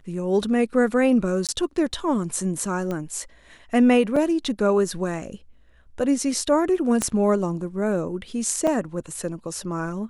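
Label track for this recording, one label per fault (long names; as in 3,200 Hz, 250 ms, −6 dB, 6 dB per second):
1.470000	1.490000	drop-out 17 ms
2.910000	2.910000	click −17 dBFS
4.160000	4.160000	drop-out 4.4 ms
7.020000	7.020000	click −9 dBFS
8.670000	8.680000	drop-out 5.1 ms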